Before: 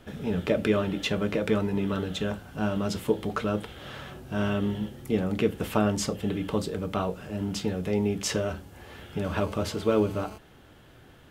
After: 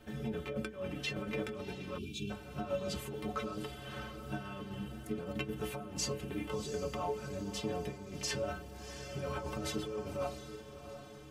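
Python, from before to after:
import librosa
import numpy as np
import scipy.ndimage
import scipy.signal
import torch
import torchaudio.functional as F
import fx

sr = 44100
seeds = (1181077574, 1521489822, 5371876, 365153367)

y = fx.pitch_ramps(x, sr, semitones=-1.5, every_ms=1054)
y = fx.over_compress(y, sr, threshold_db=-30.0, ratio=-0.5)
y = fx.stiff_resonator(y, sr, f0_hz=65.0, decay_s=0.41, stiffness=0.03)
y = fx.echo_diffused(y, sr, ms=709, feedback_pct=49, wet_db=-11.0)
y = fx.spec_box(y, sr, start_s=1.98, length_s=0.32, low_hz=410.0, high_hz=2200.0, gain_db=-27)
y = y * 10.0 ** (2.5 / 20.0)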